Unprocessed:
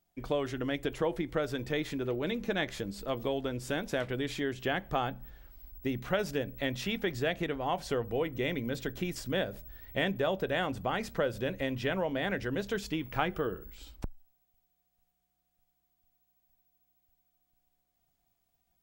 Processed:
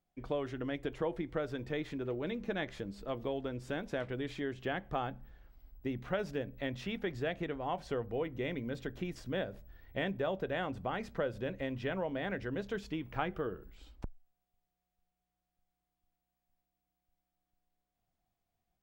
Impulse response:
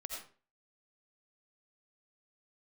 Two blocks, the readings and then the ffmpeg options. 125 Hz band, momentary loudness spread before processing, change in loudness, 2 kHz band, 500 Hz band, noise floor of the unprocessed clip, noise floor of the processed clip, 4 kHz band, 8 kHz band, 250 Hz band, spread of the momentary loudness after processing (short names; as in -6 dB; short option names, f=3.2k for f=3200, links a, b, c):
-4.0 dB, 6 LU, -4.5 dB, -6.0 dB, -4.0 dB, -79 dBFS, under -85 dBFS, -8.5 dB, under -10 dB, -4.0 dB, 5 LU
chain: -af "lowpass=f=2.5k:p=1,volume=-4dB"